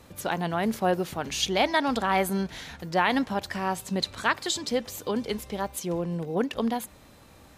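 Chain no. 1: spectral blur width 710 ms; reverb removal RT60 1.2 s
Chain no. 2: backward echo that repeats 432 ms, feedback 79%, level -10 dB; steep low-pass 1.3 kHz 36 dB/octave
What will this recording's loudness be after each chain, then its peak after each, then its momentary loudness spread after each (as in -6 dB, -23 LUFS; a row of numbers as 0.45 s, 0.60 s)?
-37.5 LUFS, -29.0 LUFS; -20.0 dBFS, -11.0 dBFS; 6 LU, 7 LU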